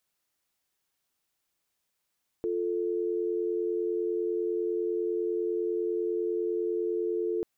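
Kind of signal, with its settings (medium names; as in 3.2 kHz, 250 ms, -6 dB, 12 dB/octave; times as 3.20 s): call progress tone dial tone, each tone -29.5 dBFS 4.99 s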